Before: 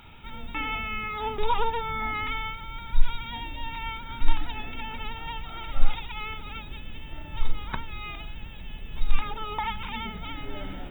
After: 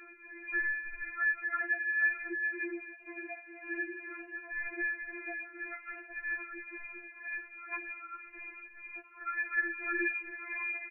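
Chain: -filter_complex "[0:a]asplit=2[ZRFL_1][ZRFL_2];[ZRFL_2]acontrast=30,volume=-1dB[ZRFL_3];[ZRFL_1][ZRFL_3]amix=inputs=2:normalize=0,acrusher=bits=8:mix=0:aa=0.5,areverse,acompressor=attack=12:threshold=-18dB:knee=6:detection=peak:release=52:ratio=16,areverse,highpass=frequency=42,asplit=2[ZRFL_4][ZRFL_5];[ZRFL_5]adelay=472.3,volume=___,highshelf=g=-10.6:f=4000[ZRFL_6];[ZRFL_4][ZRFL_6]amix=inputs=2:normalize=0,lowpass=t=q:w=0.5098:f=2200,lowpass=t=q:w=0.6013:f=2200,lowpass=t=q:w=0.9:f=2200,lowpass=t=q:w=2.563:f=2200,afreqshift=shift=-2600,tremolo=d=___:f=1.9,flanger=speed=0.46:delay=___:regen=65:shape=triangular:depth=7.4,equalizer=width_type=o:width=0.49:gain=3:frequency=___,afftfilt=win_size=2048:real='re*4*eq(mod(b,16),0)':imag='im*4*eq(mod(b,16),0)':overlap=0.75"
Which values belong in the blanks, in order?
-20dB, 0.6, 8, 430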